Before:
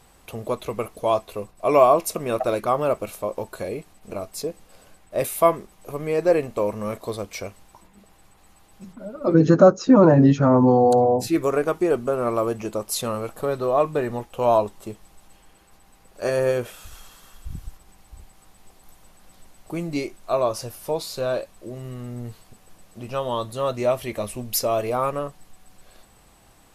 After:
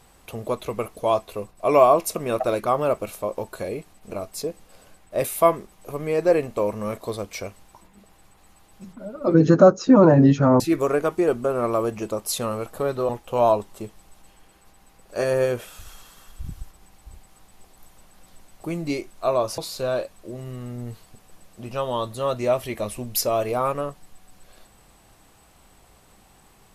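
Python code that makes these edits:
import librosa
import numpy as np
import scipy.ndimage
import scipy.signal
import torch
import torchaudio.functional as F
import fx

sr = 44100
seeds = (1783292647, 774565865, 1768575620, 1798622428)

y = fx.edit(x, sr, fx.cut(start_s=10.6, length_s=0.63),
    fx.cut(start_s=13.72, length_s=0.43),
    fx.cut(start_s=20.64, length_s=0.32), tone=tone)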